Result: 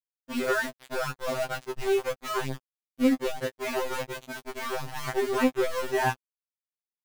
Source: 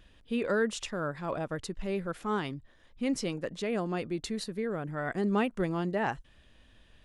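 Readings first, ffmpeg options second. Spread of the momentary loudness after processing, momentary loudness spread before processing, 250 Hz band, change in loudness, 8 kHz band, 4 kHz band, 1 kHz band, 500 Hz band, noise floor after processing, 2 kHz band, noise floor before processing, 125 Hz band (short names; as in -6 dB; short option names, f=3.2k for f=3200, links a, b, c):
11 LU, 7 LU, +1.5 dB, +3.0 dB, +4.0 dB, +4.0 dB, +4.5 dB, +4.0 dB, under -85 dBFS, +5.0 dB, -61 dBFS, -3.0 dB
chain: -filter_complex "[0:a]acrossover=split=2600[a][b];[b]acompressor=threshold=-48dB:ratio=4:attack=1:release=60[c];[a][c]amix=inputs=2:normalize=0,aeval=exprs='val(0)*gte(abs(val(0)),0.0224)':c=same,afftfilt=real='re*2.45*eq(mod(b,6),0)':imag='im*2.45*eq(mod(b,6),0)':win_size=2048:overlap=0.75,volume=7dB"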